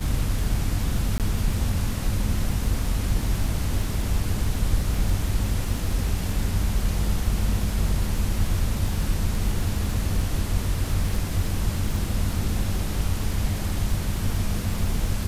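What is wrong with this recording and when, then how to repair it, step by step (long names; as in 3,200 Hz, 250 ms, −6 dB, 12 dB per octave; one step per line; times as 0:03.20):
surface crackle 33 per second −29 dBFS
0:01.18–0:01.20: drop-out 18 ms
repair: click removal
repair the gap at 0:01.18, 18 ms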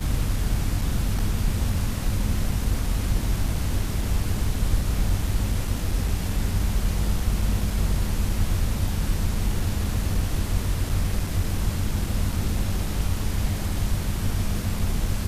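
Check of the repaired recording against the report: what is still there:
none of them is left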